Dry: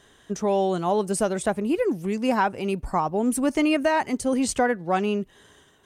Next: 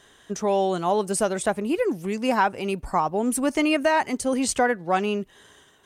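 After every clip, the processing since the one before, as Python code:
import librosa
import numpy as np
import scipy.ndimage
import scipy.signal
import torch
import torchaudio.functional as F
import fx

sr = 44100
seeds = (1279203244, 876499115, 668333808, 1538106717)

y = fx.low_shelf(x, sr, hz=410.0, db=-5.5)
y = y * librosa.db_to_amplitude(2.5)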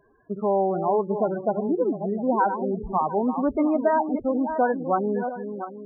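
y = fx.reverse_delay_fb(x, sr, ms=353, feedback_pct=49, wet_db=-8)
y = scipy.signal.sosfilt(scipy.signal.butter(4, 1500.0, 'lowpass', fs=sr, output='sos'), y)
y = fx.spec_topn(y, sr, count=16)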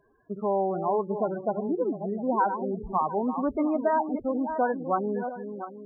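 y = fx.dynamic_eq(x, sr, hz=1100.0, q=3.8, threshold_db=-37.0, ratio=4.0, max_db=4)
y = y * librosa.db_to_amplitude(-4.0)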